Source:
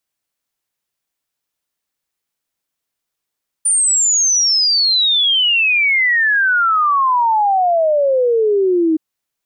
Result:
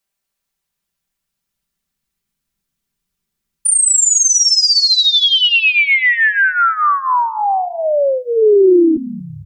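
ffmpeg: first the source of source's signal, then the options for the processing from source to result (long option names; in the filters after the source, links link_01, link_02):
-f lavfi -i "aevalsrc='0.282*clip(min(t,5.32-t)/0.01,0,1)*sin(2*PI*9300*5.32/log(310/9300)*(exp(log(310/9300)*t/5.32)-1))':duration=5.32:sample_rate=44100"
-filter_complex "[0:a]aecho=1:1:5.1:0.7,asubboost=boost=10.5:cutoff=200,asplit=6[link_01][link_02][link_03][link_04][link_05][link_06];[link_02]adelay=230,afreqshift=-87,volume=-16dB[link_07];[link_03]adelay=460,afreqshift=-174,volume=-21.4dB[link_08];[link_04]adelay=690,afreqshift=-261,volume=-26.7dB[link_09];[link_05]adelay=920,afreqshift=-348,volume=-32.1dB[link_10];[link_06]adelay=1150,afreqshift=-435,volume=-37.4dB[link_11];[link_01][link_07][link_08][link_09][link_10][link_11]amix=inputs=6:normalize=0"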